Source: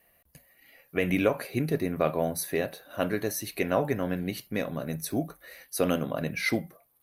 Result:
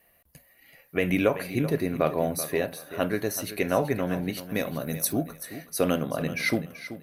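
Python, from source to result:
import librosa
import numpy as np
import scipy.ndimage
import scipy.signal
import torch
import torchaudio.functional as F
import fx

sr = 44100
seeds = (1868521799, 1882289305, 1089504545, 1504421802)

y = fx.high_shelf(x, sr, hz=5700.0, db=10.0, at=(4.49, 5.13))
y = fx.echo_feedback(y, sr, ms=382, feedback_pct=23, wet_db=-13.0)
y = F.gain(torch.from_numpy(y), 1.5).numpy()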